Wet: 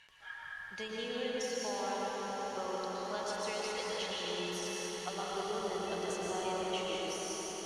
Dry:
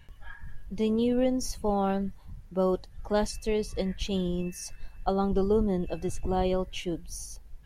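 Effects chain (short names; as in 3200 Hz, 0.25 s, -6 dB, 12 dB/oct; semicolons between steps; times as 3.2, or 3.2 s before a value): HPF 450 Hz 6 dB/oct; tilt shelf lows -9.5 dB, about 760 Hz; compressor, threshold -35 dBFS, peak gain reduction 12 dB; air absorption 64 m; swelling echo 91 ms, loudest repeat 8, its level -16 dB; reverb RT60 4.4 s, pre-delay 0.107 s, DRR -5 dB; gain -3.5 dB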